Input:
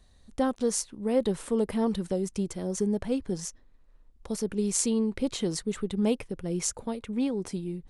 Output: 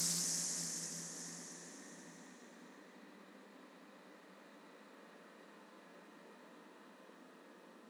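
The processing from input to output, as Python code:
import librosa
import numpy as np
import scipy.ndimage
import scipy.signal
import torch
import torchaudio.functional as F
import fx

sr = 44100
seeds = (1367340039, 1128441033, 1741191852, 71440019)

y = scipy.signal.sosfilt(scipy.signal.cheby1(10, 1.0, 170.0, 'highpass', fs=sr, output='sos'), x)
y = fx.auto_swell(y, sr, attack_ms=436.0)
y = fx.paulstretch(y, sr, seeds[0], factor=18.0, window_s=0.5, from_s=3.62)
y = y + 10.0 ** (-17.0 / 20.0) * np.pad(y, (int(1161 * sr / 1000.0), 0))[:len(y)]
y = fx.doppler_dist(y, sr, depth_ms=0.58)
y = y * librosa.db_to_amplitude(17.5)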